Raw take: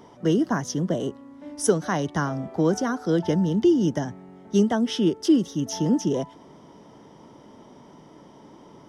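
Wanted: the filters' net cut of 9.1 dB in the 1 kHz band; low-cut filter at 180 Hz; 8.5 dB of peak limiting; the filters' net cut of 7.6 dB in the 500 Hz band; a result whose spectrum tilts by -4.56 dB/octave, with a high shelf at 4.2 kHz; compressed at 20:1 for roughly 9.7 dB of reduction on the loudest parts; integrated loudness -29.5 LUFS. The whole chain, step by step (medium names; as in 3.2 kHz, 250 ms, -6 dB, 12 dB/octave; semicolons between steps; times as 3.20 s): high-pass 180 Hz; peaking EQ 500 Hz -9 dB; peaking EQ 1 kHz -9 dB; treble shelf 4.2 kHz +4.5 dB; compression 20:1, threshold -28 dBFS; trim +6.5 dB; peak limiter -20.5 dBFS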